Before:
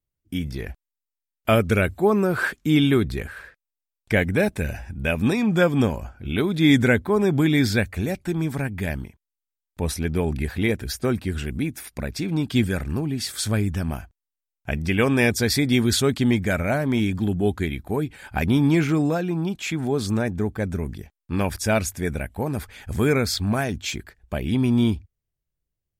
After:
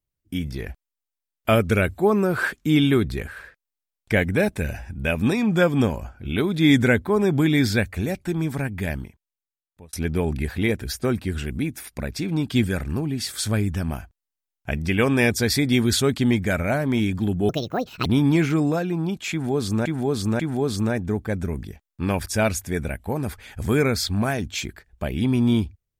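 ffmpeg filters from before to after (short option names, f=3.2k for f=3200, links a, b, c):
-filter_complex "[0:a]asplit=6[a][b][c][d][e][f];[a]atrim=end=9.93,asetpts=PTS-STARTPTS,afade=t=out:st=8.96:d=0.97[g];[b]atrim=start=9.93:end=17.494,asetpts=PTS-STARTPTS,afade=t=in:d=0.004:c=hsin[h];[c]atrim=start=17.49:end=18.44,asetpts=PTS-STARTPTS,asetrate=74088,aresample=44100[i];[d]atrim=start=18.436:end=20.242[j];[e]atrim=start=19.698:end=20.242[k];[f]atrim=start=19.698[l];[g][h]concat=n=2:v=0:a=1[m];[m][i]acrossfade=d=0.004:c1=hsin:c2=hsin[n];[n][j]acrossfade=d=0.004:c1=hsin:c2=hsin[o];[o][k]acrossfade=d=0.004:c1=hsin:c2=hsin[p];[p][l]acrossfade=d=0.004:c1=hsin:c2=hsin"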